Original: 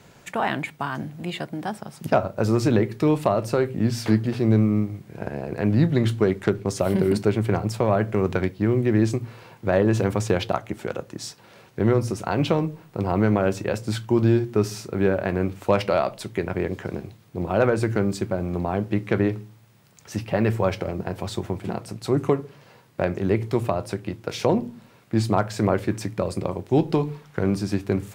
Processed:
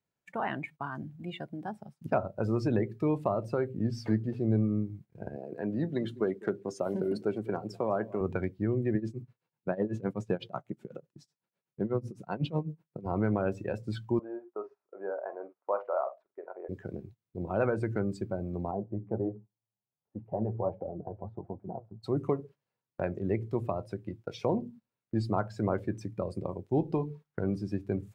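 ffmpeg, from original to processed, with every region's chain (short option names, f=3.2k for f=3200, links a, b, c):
-filter_complex "[0:a]asettb=1/sr,asplit=3[a][b][c];[a]atrim=end=5.364[d];[b]atrim=start=5.36:end=8.21,asetpts=PTS-STARTPTS,afade=t=in:d=0.004:c=qsin,afade=t=out:st=2.846:d=0.004:c=qsin,highpass=210,equalizer=f=2.1k:t=o:w=0.23:g=-2.5,aecho=1:1:205:0.133,atrim=end_sample=125685[e];[c]atrim=start=8.206[f];[d][e]acrossfade=d=0.004:c1=hsin:c2=qsin[g];[g][f]acrossfade=d=0.004:c1=qsin:c2=hsin,asettb=1/sr,asplit=3[h][i][j];[h]atrim=end=8.954[k];[i]atrim=start=8.95:end=13.06,asetpts=PTS-STARTPTS,afade=t=in:d=0.004:c=qsin,afade=t=out:st=4.106:d=0.004:c=qsin,lowshelf=f=110:t=q:w=3:g=-8,tremolo=f=8:d=0.89[l];[j]atrim=start=13.056[m];[k][l]acrossfade=d=0.004:c1=hsin:c2=qsin[n];[n][m]acrossfade=d=0.004:c1=qsin:c2=hsin,asettb=1/sr,asplit=3[o][p][q];[o]atrim=end=14.194[r];[p]atrim=start=14.19:end=16.69,asetpts=PTS-STARTPTS,afade=t=in:d=0.004:c=qsin,afade=t=out:st=2.496:d=0.004:c=qsin,asuperpass=centerf=850:order=4:qfactor=0.95,asplit=2[s][t];[t]adelay=46,volume=-9dB[u];[s][u]amix=inputs=2:normalize=0,atrim=end_sample=110250[v];[q]atrim=start=16.686[w];[r][v]acrossfade=d=0.004:c1=hsin:c2=qsin[x];[x][w]acrossfade=d=0.004:c1=qsin:c2=hsin,asettb=1/sr,asplit=3[y][z][aa];[y]atrim=end=18.714[ab];[z]atrim=start=18.71:end=22.03,asetpts=PTS-STARTPTS,afade=t=in:d=0.004:c=qsin,afade=t=out:st=3.316:d=0.004:c=qsin,flanger=delay=3.4:depth=7.3:regen=44:speed=1.4:shape=triangular,lowpass=f=810:t=q:w=1.8[ac];[aa]atrim=start=22.026[ad];[ab][ac]acrossfade=d=0.004:c1=hsin:c2=qsin[ae];[ae][ad]acrossfade=d=0.004:c1=qsin:c2=hsin,agate=range=-14dB:threshold=-39dB:ratio=16:detection=peak,afftdn=nr=16:nf=-31,volume=-8.5dB"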